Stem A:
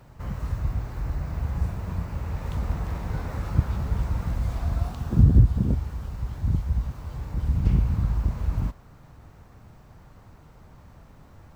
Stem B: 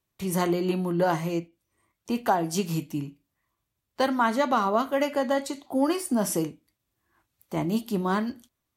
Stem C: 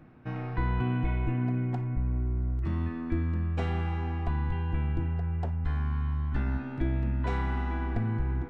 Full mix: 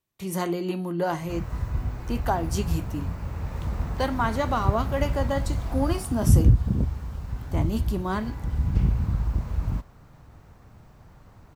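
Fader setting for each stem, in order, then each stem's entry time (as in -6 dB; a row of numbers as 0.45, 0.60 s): -1.0, -2.5, -14.5 dB; 1.10, 0.00, 0.95 s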